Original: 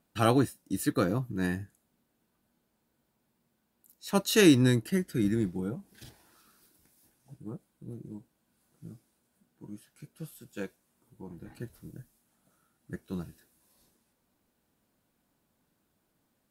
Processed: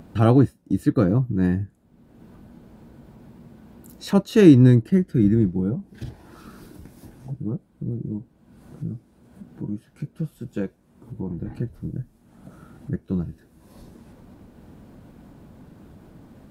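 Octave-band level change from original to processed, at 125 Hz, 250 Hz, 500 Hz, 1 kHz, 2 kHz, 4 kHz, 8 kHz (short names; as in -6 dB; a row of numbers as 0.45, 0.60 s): +12.0 dB, +9.5 dB, +7.0 dB, +2.5 dB, -1.5 dB, -4.0 dB, n/a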